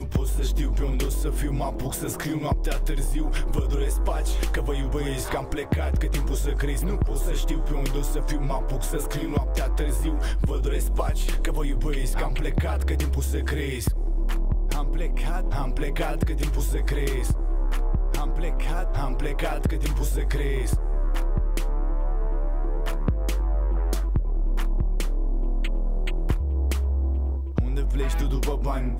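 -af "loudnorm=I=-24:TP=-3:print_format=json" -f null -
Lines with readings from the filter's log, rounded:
"input_i" : "-27.3",
"input_tp" : "-10.2",
"input_lra" : "1.2",
"input_thresh" : "-37.3",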